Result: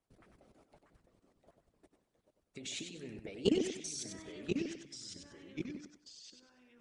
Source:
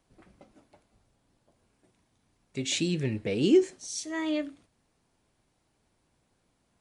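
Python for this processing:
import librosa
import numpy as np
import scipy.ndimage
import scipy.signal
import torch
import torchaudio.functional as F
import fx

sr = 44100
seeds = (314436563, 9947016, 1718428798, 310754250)

p1 = fx.small_body(x, sr, hz=(420.0, 670.0, 1300.0), ring_ms=45, db=7)
p2 = fx.level_steps(p1, sr, step_db=21)
p3 = fx.echo_pitch(p2, sr, ms=611, semitones=-2, count=2, db_per_echo=-6.0)
p4 = p3 + fx.echo_feedback(p3, sr, ms=96, feedback_pct=32, wet_db=-6, dry=0)
p5 = fx.hpss(p4, sr, part='harmonic', gain_db=-16)
y = p5 * librosa.db_to_amplitude(3.0)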